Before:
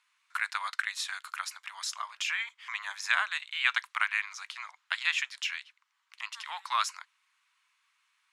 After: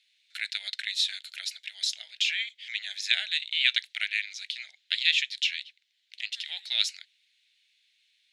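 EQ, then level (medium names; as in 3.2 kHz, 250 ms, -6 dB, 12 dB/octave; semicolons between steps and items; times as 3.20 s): Chebyshev band-stop 560–2100 Hz, order 2; peaking EQ 3.8 kHz +15 dB 0.91 oct; -2.0 dB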